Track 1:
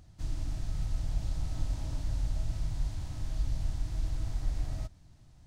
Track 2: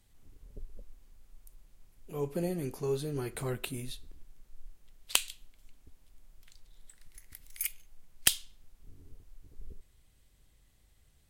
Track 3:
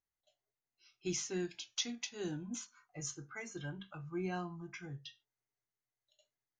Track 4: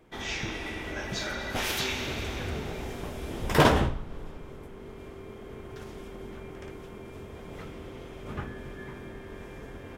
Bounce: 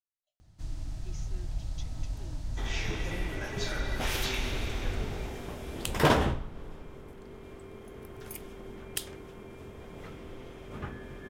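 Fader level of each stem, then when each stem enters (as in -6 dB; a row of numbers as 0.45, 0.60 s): -3.0, -10.0, -14.5, -3.0 dB; 0.40, 0.70, 0.00, 2.45 s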